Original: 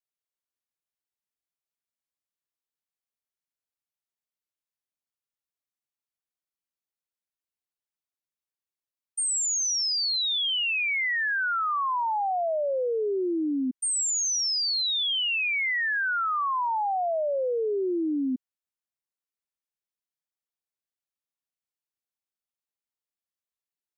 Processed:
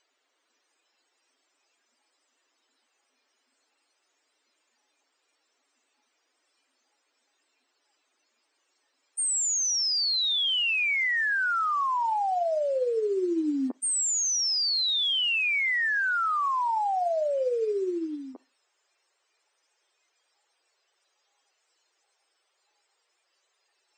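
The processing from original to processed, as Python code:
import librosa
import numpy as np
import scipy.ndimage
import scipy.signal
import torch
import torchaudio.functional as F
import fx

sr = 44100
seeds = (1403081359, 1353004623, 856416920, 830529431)

y = fx.bin_compress(x, sr, power=0.4)
y = fx.highpass(y, sr, hz=fx.steps((0.0, 160.0), (15.91, 300.0)), slope=24)
y = fx.spec_topn(y, sr, count=64)
y = fx.rev_schroeder(y, sr, rt60_s=0.4, comb_ms=33, drr_db=17.0)
y = fx.noise_reduce_blind(y, sr, reduce_db=11)
y = fx.upward_expand(y, sr, threshold_db=-35.0, expansion=2.5)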